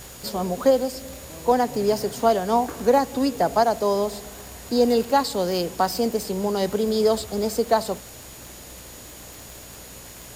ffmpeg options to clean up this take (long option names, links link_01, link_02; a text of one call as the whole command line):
ffmpeg -i in.wav -af "adeclick=threshold=4,bandreject=frequency=60.5:width_type=h:width=4,bandreject=frequency=121:width_type=h:width=4,bandreject=frequency=181.5:width_type=h:width=4,bandreject=frequency=242:width_type=h:width=4,bandreject=frequency=302.5:width_type=h:width=4,bandreject=frequency=6800:width=30,afwtdn=0.0071" out.wav